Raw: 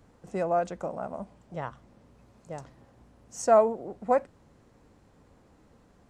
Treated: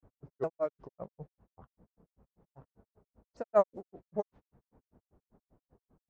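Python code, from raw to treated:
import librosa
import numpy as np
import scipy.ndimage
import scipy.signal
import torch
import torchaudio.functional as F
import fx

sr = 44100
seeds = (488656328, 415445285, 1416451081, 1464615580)

y = fx.pitch_ramps(x, sr, semitones=-5.5, every_ms=429)
y = fx.granulator(y, sr, seeds[0], grain_ms=110.0, per_s=5.1, spray_ms=100.0, spread_st=0)
y = fx.env_lowpass(y, sr, base_hz=1000.0, full_db=-27.0)
y = y * librosa.db_to_amplitude(-1.5)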